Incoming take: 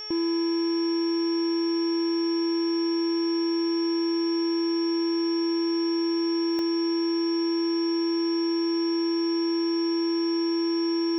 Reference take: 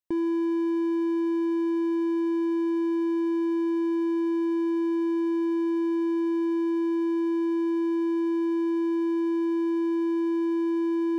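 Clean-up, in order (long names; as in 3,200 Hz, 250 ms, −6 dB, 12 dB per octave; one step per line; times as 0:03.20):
hum removal 427.1 Hz, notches 8
notch filter 5,500 Hz, Q 30
repair the gap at 0:06.59, 1.1 ms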